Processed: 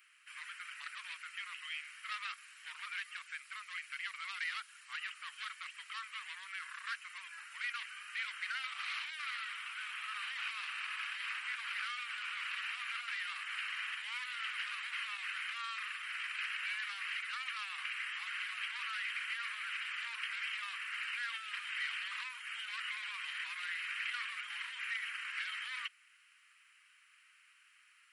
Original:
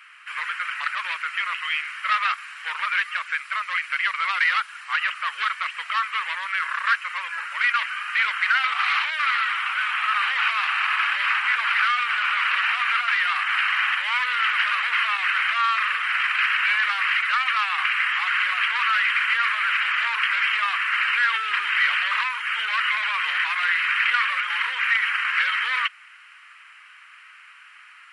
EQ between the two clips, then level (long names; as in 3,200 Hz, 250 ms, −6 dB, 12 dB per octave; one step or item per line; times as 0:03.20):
first difference
−7.5 dB